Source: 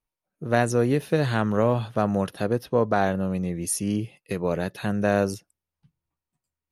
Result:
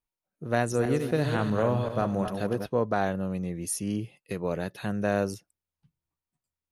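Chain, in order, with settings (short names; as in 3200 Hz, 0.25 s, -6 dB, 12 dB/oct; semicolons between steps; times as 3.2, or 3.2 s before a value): 0.6–2.67 regenerating reverse delay 0.129 s, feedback 49%, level -6 dB; gain -4.5 dB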